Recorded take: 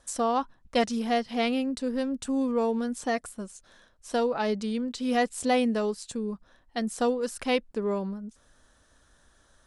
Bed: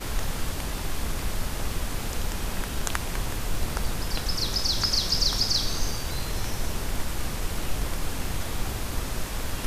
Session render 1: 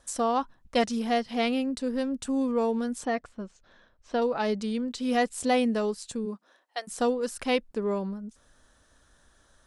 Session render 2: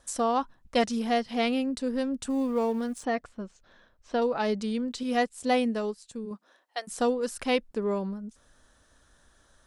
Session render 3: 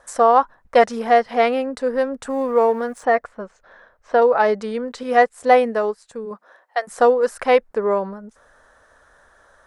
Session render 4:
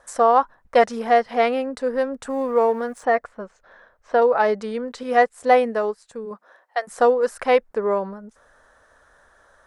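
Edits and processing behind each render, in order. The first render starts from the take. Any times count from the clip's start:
3.05–4.22 s: distance through air 180 m; 6.25–6.87 s: high-pass 170 Hz -> 650 Hz 24 dB/octave
2.30–3.04 s: companding laws mixed up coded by A; 5.03–6.31 s: upward expansion, over -42 dBFS
high-order bell 940 Hz +13 dB 2.6 oct
trim -2 dB

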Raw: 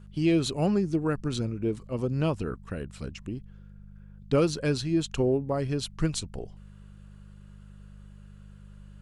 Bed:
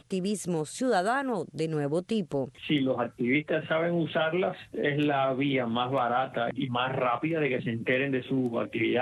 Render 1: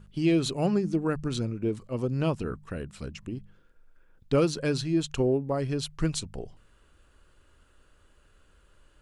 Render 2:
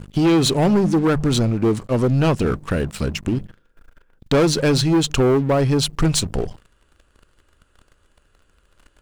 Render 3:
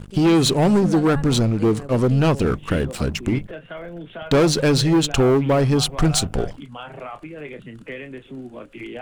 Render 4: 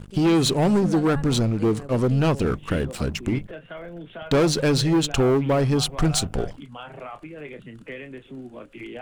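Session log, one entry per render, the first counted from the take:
de-hum 50 Hz, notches 4
waveshaping leveller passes 3; in parallel at +0.5 dB: compression, threshold -27 dBFS, peak gain reduction 10.5 dB
add bed -7.5 dB
trim -3 dB

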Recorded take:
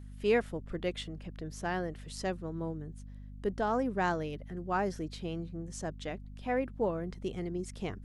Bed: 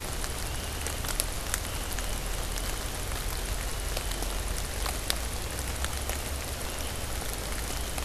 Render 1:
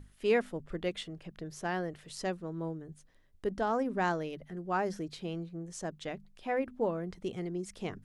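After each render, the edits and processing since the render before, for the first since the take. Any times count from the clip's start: hum notches 50/100/150/200/250 Hz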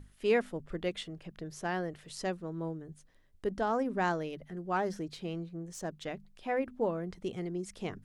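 4.76–6.08 s: self-modulated delay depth 0.055 ms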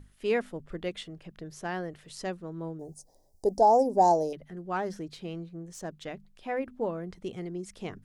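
2.79–4.33 s: FFT filter 210 Hz 0 dB, 840 Hz +15 dB, 1.3 kHz -20 dB, 3 kHz -19 dB, 5 kHz +12 dB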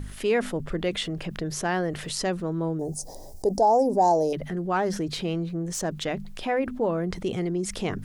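level flattener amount 50%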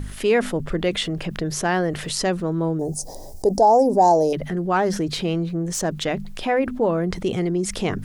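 trim +5 dB

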